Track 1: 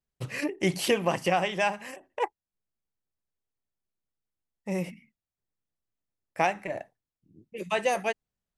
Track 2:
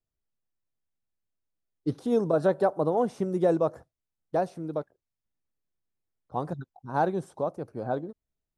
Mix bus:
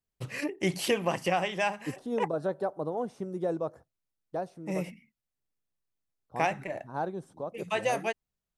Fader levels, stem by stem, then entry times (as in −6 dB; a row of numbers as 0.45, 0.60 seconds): −2.5, −7.5 decibels; 0.00, 0.00 seconds